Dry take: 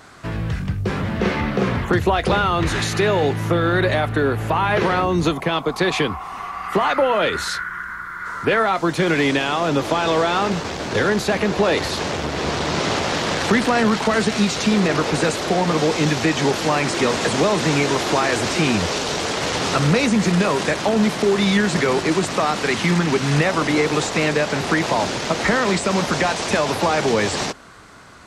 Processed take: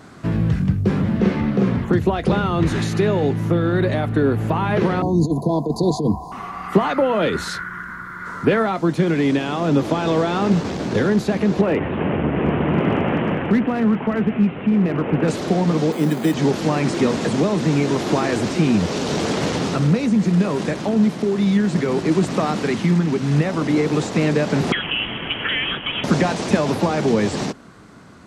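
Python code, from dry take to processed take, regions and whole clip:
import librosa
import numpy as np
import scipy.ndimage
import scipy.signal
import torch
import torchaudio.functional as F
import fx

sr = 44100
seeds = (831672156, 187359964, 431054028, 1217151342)

y = fx.chain(x, sr, fx.ripple_eq(per_octave=1.8, db=7),
    fx.over_compress(threshold_db=-19.0, ratio=-0.5),
    fx.cheby1_bandstop(low_hz=1000.0, high_hz=3900.0, order=5), at=(5.02, 6.32))
y = fx.chain(y, sr, fx.steep_lowpass(hz=3000.0, slope=72),
    fx.clip_hard(threshold_db=-13.0), at=(11.61, 15.28))
y = fx.chain(y, sr, fx.highpass(hz=160.0, slope=24),
    fx.resample_bad(factor=8, down='filtered', up='hold'), at=(15.92, 16.34))
y = fx.chain(y, sr, fx.highpass(hz=380.0, slope=12),
    fx.freq_invert(carrier_hz=3600), at=(24.72, 26.04))
y = fx.peak_eq(y, sr, hz=200.0, db=13.0, octaves=2.4)
y = fx.rider(y, sr, range_db=4, speed_s=0.5)
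y = y * librosa.db_to_amplitude(-7.5)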